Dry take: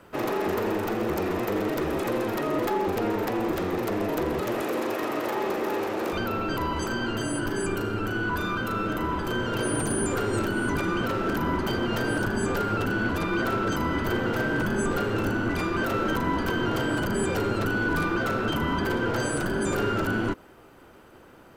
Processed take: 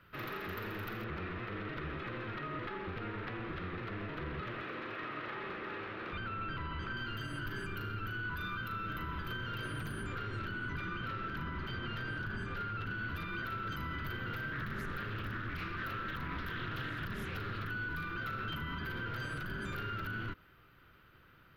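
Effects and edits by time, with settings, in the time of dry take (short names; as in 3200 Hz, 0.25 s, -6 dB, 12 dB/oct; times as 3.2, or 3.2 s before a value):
1.04–6.97 LPF 3300 Hz
10.03–12.95 air absorption 51 m
14.52–17.7 Doppler distortion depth 0.38 ms
whole clip: EQ curve 150 Hz 0 dB, 230 Hz -10 dB, 840 Hz -15 dB, 1300 Hz 0 dB, 3900 Hz -1 dB, 8600 Hz -23 dB, 12000 Hz -3 dB; limiter -25.5 dBFS; gain -5.5 dB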